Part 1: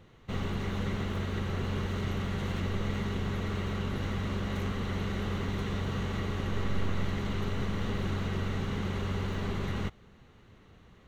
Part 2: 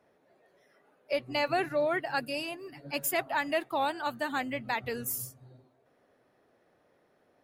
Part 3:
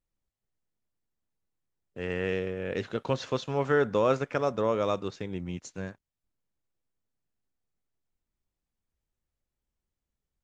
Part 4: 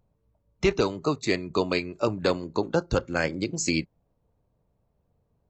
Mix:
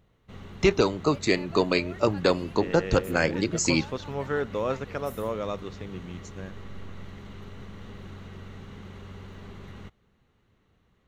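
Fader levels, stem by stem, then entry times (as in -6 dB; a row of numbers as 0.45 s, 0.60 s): -10.5 dB, -16.0 dB, -4.0 dB, +2.0 dB; 0.00 s, 0.00 s, 0.60 s, 0.00 s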